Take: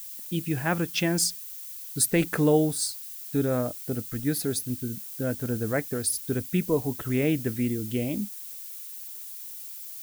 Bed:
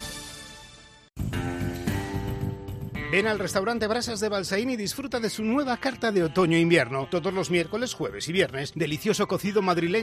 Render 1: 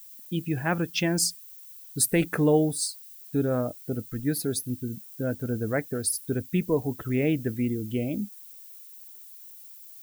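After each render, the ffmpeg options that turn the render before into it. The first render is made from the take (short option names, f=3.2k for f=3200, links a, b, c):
-af "afftdn=nr=10:nf=-40"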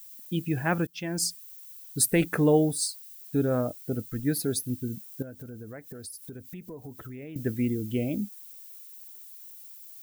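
-filter_complex "[0:a]asettb=1/sr,asplit=3[a][b][c];[a]atrim=end=5.224[d];[b]atrim=start=5.22:end=7.36,asetpts=PTS-STARTPTS,afade=t=in:d=0.004:c=qsin,afade=t=out:st=2.136:d=0.004:c=qsin,acompressor=threshold=-39dB:ratio=6:attack=3.2:release=140:knee=1:detection=peak[e];[c]atrim=start=7.356[f];[d][e]acrossfade=d=0.004:c1=hsin:c2=qsin[g];[g][f]acrossfade=d=0.004:c1=qsin:c2=hsin,asplit=2[h][i];[h]atrim=end=0.87,asetpts=PTS-STARTPTS,afade=t=out:st=0.866:d=0.004:c=hsin:silence=0.0707946[j];[i]atrim=start=0.87,asetpts=PTS-STARTPTS,afade=t=in:d=0.54:silence=0.0707946[k];[j][k]concat=n=2:v=0:a=1"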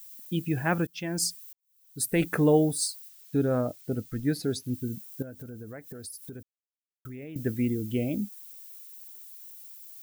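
-filter_complex "[0:a]asettb=1/sr,asplit=3[a][b][c];[a]atrim=end=3.084[d];[b]atrim=start=3.08:end=4.74,asetpts=PTS-STARTPTS,afade=t=in:d=0.004:c=qsin,afade=t=out:st=1.656:d=0.004:c=qsin,acrossover=split=7100[e][f];[f]acompressor=threshold=-48dB:ratio=4:attack=1:release=60[g];[e][g]amix=inputs=2:normalize=0[h];[c]atrim=start=4.736[i];[d][h]acrossfade=d=0.004:c1=hsin:c2=qsin[j];[j][i]acrossfade=d=0.004:c1=qsin:c2=hsin,asplit=4[k][l][m][n];[k]atrim=end=1.53,asetpts=PTS-STARTPTS,afade=t=out:st=1.526:d=0.004:c=hsin[o];[l]atrim=start=1.53:end=6.43,asetpts=PTS-STARTPTS,afade=t=in:d=0.72:c=qua,afade=t=out:st=4.896:d=0.004:c=hsin[p];[m]atrim=start=6.43:end=7.05,asetpts=PTS-STARTPTS,volume=0[q];[n]atrim=start=7.05,asetpts=PTS-STARTPTS,afade=t=in:d=0.004:c=hsin[r];[o][p][q][r]concat=n=4:v=0:a=1"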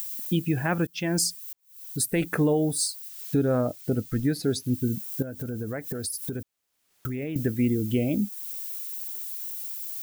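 -filter_complex "[0:a]asplit=2[a][b];[b]acompressor=mode=upward:threshold=-29dB:ratio=2.5,volume=1dB[c];[a][c]amix=inputs=2:normalize=0,alimiter=limit=-15dB:level=0:latency=1:release=378"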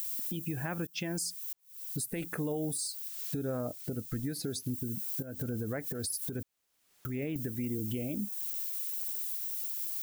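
-filter_complex "[0:a]acrossover=split=5800[a][b];[a]acompressor=threshold=-31dB:ratio=6[c];[c][b]amix=inputs=2:normalize=0,alimiter=level_in=1.5dB:limit=-24dB:level=0:latency=1:release=110,volume=-1.5dB"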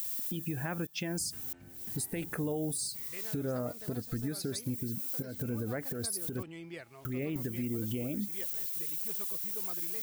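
-filter_complex "[1:a]volume=-25dB[a];[0:a][a]amix=inputs=2:normalize=0"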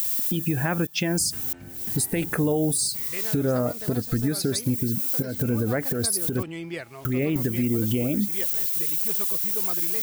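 -af "volume=11dB"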